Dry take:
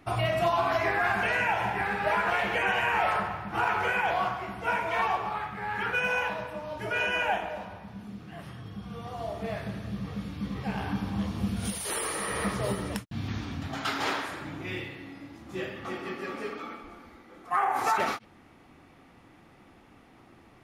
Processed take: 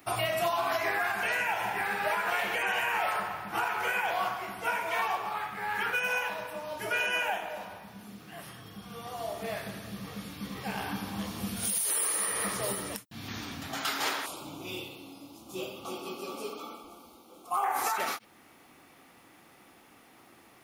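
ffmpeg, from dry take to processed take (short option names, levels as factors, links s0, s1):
-filter_complex "[0:a]asettb=1/sr,asplit=3[s0][s1][s2];[s0]atrim=end=14.264[s3];[s1]atrim=start=14.26:end=17.64,asetpts=PTS-STARTPTS,afade=t=in:d=0.004:c=qsin,afade=t=out:st=3.376:d=0.004:c=qsin,asuperstop=centerf=1800:order=4:qfactor=1.2[s4];[s2]atrim=start=17.636[s5];[s3][s4]acrossfade=d=0.004:c1=hsin:c2=qsin[s6];[s6][s5]acrossfade=d=0.004:c1=qsin:c2=hsin,aemphasis=mode=production:type=bsi,alimiter=limit=0.106:level=0:latency=1:release=411"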